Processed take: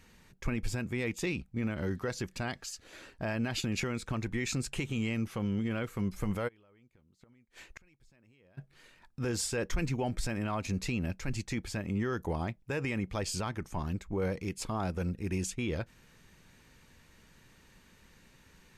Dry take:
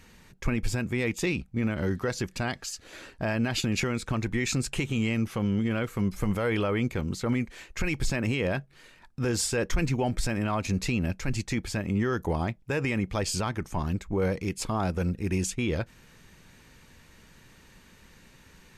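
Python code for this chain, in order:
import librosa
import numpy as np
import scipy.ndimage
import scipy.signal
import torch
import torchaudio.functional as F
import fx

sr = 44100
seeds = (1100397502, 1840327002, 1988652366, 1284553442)

y = fx.gate_flip(x, sr, shuts_db=-24.0, range_db=-31, at=(6.47, 8.57), fade=0.02)
y = F.gain(torch.from_numpy(y), -5.5).numpy()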